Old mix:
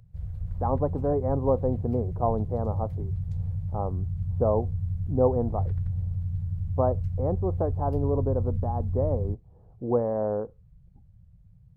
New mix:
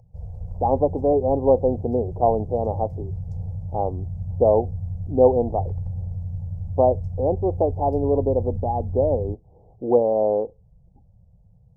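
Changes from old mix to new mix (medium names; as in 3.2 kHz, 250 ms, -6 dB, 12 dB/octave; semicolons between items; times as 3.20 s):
speech -4.5 dB; master: add FFT filter 160 Hz 0 dB, 280 Hz +10 dB, 480 Hz +12 dB, 830 Hz +13 dB, 1.4 kHz -15 dB, 2.2 kHz -11 dB, 3.8 kHz -12 dB, 5.4 kHz +3 dB, 13 kHz -5 dB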